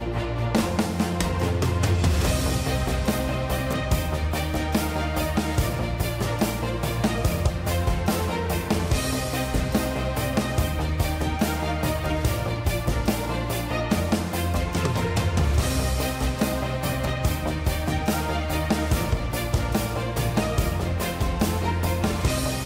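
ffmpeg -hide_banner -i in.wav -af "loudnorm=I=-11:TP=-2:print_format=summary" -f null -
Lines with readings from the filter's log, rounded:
Input Integrated:    -25.1 LUFS
Input True Peak:     -10.4 dBTP
Input LRA:             1.3 LU
Input Threshold:     -35.1 LUFS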